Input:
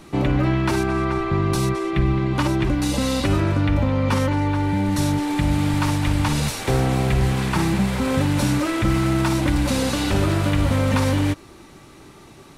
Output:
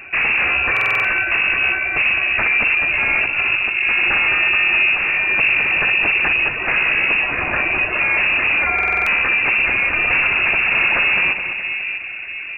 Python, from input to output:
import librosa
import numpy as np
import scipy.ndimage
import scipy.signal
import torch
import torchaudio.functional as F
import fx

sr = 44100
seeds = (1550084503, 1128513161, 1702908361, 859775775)

p1 = fx.dereverb_blind(x, sr, rt60_s=0.97)
p2 = fx.over_compress(p1, sr, threshold_db=-25.0, ratio=-0.5, at=(3.02, 3.92))
p3 = fx.tilt_eq(p2, sr, slope=2.5, at=(7.21, 7.93))
p4 = 10.0 ** (-20.5 / 20.0) * (np.abs((p3 / 10.0 ** (-20.5 / 20.0) + 3.0) % 4.0 - 2.0) - 1.0)
p5 = p4 + fx.echo_split(p4, sr, split_hz=900.0, low_ms=645, high_ms=211, feedback_pct=52, wet_db=-8.0, dry=0)
p6 = fx.freq_invert(p5, sr, carrier_hz=2700)
p7 = fx.buffer_glitch(p6, sr, at_s=(0.72, 8.74), block=2048, repeats=6)
y = F.gain(torch.from_numpy(p7), 8.0).numpy()